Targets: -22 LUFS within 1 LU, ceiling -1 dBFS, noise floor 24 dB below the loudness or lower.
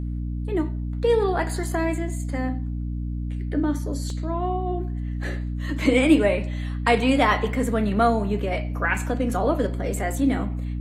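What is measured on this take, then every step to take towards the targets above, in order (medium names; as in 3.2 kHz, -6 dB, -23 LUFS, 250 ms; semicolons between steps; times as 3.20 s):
dropouts 1; longest dropout 1.8 ms; hum 60 Hz; highest harmonic 300 Hz; hum level -26 dBFS; loudness -24.0 LUFS; peak level -6.0 dBFS; loudness target -22.0 LUFS
-> interpolate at 4.10 s, 1.8 ms; hum notches 60/120/180/240/300 Hz; trim +2 dB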